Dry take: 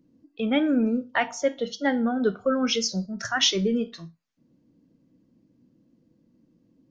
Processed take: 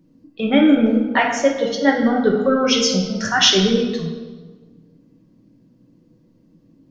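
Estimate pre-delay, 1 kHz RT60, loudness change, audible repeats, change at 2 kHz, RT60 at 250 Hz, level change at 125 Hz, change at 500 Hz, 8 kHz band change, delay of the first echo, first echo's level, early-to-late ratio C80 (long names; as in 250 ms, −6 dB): 5 ms, 1.3 s, +8.0 dB, no echo audible, +8.0 dB, 1.7 s, +9.5 dB, +8.5 dB, can't be measured, no echo audible, no echo audible, 7.0 dB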